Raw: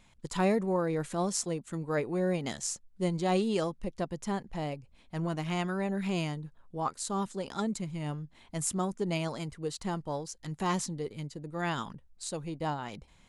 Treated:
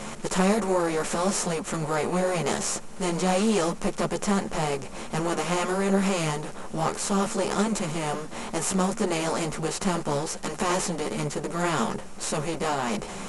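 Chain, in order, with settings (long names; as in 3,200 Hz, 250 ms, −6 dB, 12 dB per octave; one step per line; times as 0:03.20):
compressor on every frequency bin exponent 0.4
string-ensemble chorus
level +4 dB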